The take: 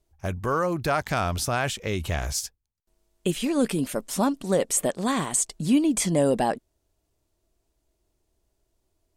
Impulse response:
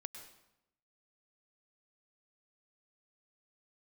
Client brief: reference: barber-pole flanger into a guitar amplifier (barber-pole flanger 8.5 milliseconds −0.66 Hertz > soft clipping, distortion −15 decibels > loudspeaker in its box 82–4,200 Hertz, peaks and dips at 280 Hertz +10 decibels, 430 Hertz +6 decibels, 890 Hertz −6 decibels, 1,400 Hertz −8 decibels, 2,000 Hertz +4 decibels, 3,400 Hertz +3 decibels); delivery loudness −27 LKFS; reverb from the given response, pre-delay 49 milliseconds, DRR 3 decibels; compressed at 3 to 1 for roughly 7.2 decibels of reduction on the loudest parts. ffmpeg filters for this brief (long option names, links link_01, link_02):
-filter_complex "[0:a]acompressor=threshold=-26dB:ratio=3,asplit=2[link_01][link_02];[1:a]atrim=start_sample=2205,adelay=49[link_03];[link_02][link_03]afir=irnorm=-1:irlink=0,volume=0.5dB[link_04];[link_01][link_04]amix=inputs=2:normalize=0,asplit=2[link_05][link_06];[link_06]adelay=8.5,afreqshift=-0.66[link_07];[link_05][link_07]amix=inputs=2:normalize=1,asoftclip=threshold=-25.5dB,highpass=82,equalizer=frequency=280:width_type=q:width=4:gain=10,equalizer=frequency=430:width_type=q:width=4:gain=6,equalizer=frequency=890:width_type=q:width=4:gain=-6,equalizer=frequency=1400:width_type=q:width=4:gain=-8,equalizer=frequency=2000:width_type=q:width=4:gain=4,equalizer=frequency=3400:width_type=q:width=4:gain=3,lowpass=frequency=4200:width=0.5412,lowpass=frequency=4200:width=1.3066,volume=3.5dB"